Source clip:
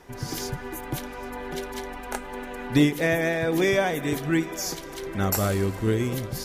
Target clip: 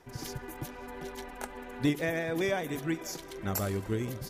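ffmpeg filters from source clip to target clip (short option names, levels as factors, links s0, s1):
-af "atempo=1.5,volume=0.422"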